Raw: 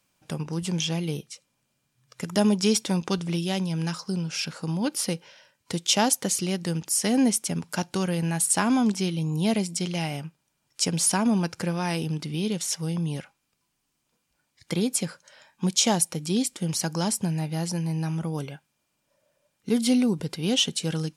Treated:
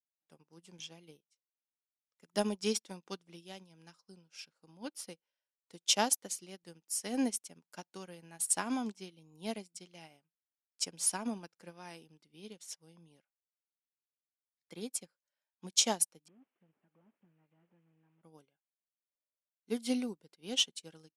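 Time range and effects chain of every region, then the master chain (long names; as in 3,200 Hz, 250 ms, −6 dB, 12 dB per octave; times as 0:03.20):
0:16.28–0:18.23: linear delta modulator 16 kbit/s, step −44.5 dBFS + downward compressor 2.5 to 1, threshold −30 dBFS
whole clip: high-pass filter 250 Hz 12 dB per octave; expander for the loud parts 2.5 to 1, over −43 dBFS; level −3.5 dB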